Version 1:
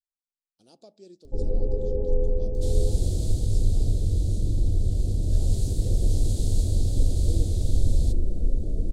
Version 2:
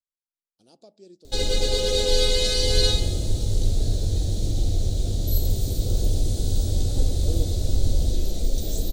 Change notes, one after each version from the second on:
first sound: remove Gaussian smoothing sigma 16 samples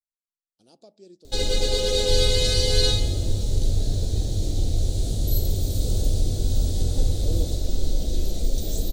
second sound: entry −0.55 s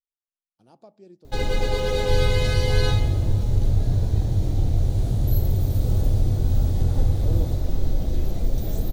master: add octave-band graphic EQ 125/500/1,000/2,000/4,000/8,000 Hz +8/−3/+10/+5/−9/−11 dB

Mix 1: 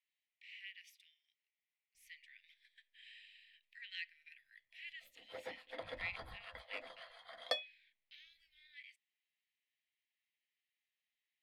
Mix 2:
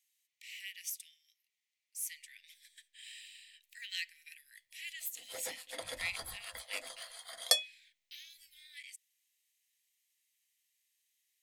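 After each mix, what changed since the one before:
master: remove high-frequency loss of the air 380 metres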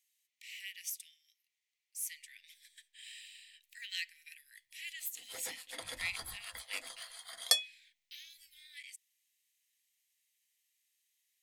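background: add parametric band 580 Hz −8.5 dB 0.55 octaves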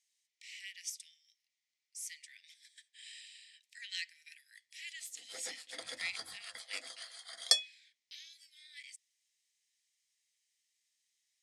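master: add loudspeaker in its box 220–9,200 Hz, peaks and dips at 970 Hz −9 dB, 2,700 Hz −4 dB, 5,200 Hz +5 dB

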